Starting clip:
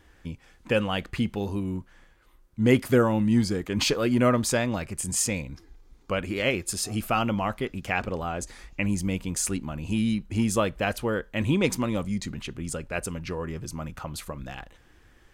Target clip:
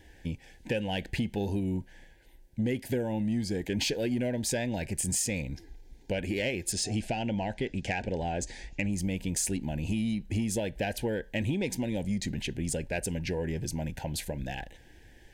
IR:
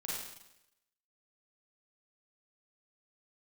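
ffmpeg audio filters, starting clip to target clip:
-filter_complex "[0:a]asettb=1/sr,asplit=3[s0][s1][s2];[s0]atrim=end=6.724[s3];[s1]atrim=start=6.72:end=8.93,asetpts=PTS-STARTPTS,afade=t=in:d=0.004:c=qsin,afade=t=out:st=2.206:d=0.004:c=qsin,lowpass=f=8300:w=0.5412,lowpass=f=8300:w=1.3066[s4];[s2]atrim=start=8.926[s5];[s3][s4]acrossfade=d=0.004:c1=hsin:c2=qsin[s6];[s6][s5]acrossfade=d=0.004:c1=qsin:c2=hsin,acompressor=threshold=0.0398:ratio=8,asoftclip=type=tanh:threshold=0.0841,asuperstop=centerf=1200:order=8:qfactor=1.9,volume=1.33"

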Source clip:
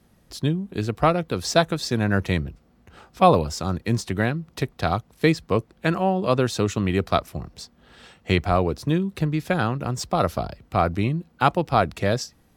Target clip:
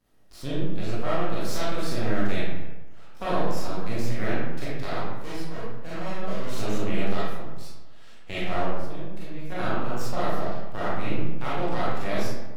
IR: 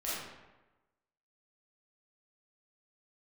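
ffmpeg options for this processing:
-filter_complex "[0:a]alimiter=limit=0.335:level=0:latency=1:release=133,asettb=1/sr,asplit=3[s0][s1][s2];[s0]atrim=end=5.124[s3];[s1]atrim=start=5.12:end=6.58,asetpts=PTS-STARTPTS,afade=t=in:d=0.004:c=qsin,afade=t=out:st=1.456:d=0.004:c=qsin,volume=13.3,asoftclip=hard,volume=0.075[s4];[s2]atrim=start=6.576[s5];[s3][s4]acrossfade=d=0.004:c1=hsin:c2=qsin[s6];[s6][s5]acrossfade=d=0.004:c1=qsin:c2=hsin,asettb=1/sr,asplit=3[s7][s8][s9];[s7]atrim=end=8.644[s10];[s8]atrim=start=8.64:end=9.52,asetpts=PTS-STARTPTS,afade=t=in:d=0.004:c=qsin,afade=t=out:st=0.876:d=0.004:c=qsin,acompressor=threshold=0.0282:ratio=4[s11];[s9]atrim=start=9.516[s12];[s10][s11]acrossfade=d=0.004:c1=hsin:c2=qsin[s13];[s13][s12]acrossfade=d=0.004:c1=qsin:c2=hsin,aeval=exprs='max(val(0),0)':c=same[s14];[1:a]atrim=start_sample=2205[s15];[s14][s15]afir=irnorm=-1:irlink=0,volume=0.531"

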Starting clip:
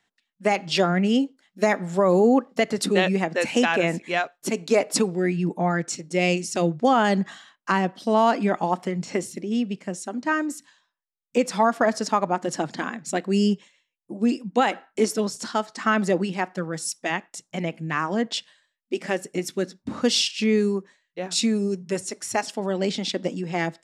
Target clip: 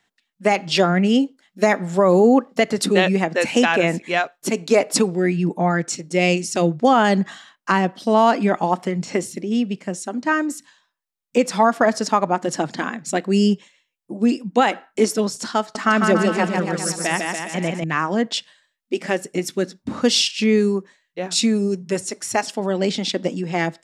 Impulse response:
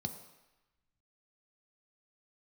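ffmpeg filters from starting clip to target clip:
-filter_complex "[0:a]asettb=1/sr,asplit=3[s0][s1][s2];[s0]atrim=end=15.604[s3];[s1]atrim=start=15.6:end=17.84,asetpts=PTS-STARTPTS,afade=t=in:d=0.004:c=qsin,afade=t=out:st=2.236:d=0.004:c=qsin,aecho=1:1:150|285|406.5|515.8|614.3:0.631|0.398|0.251|0.158|0.1,atrim=end_sample=98784[s4];[s2]atrim=start=17.836[s5];[s3][s4]acrossfade=d=0.004:c1=hsin:c2=qsin[s6];[s6][s5]acrossfade=d=0.004:c1=qsin:c2=hsin,volume=1.58"

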